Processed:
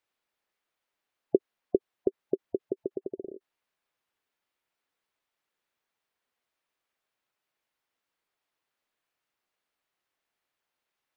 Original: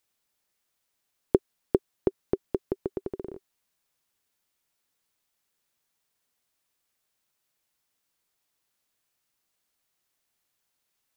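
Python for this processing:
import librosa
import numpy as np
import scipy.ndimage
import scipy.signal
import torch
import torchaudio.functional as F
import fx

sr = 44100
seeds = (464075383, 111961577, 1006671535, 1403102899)

y = fx.bass_treble(x, sr, bass_db=-8, treble_db=-12)
y = fx.spec_gate(y, sr, threshold_db=-20, keep='strong')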